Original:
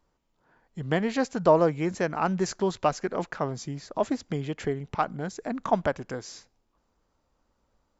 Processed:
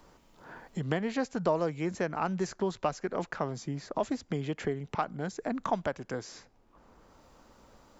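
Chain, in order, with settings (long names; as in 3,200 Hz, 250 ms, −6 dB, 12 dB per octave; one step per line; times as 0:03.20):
multiband upward and downward compressor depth 70%
level −5 dB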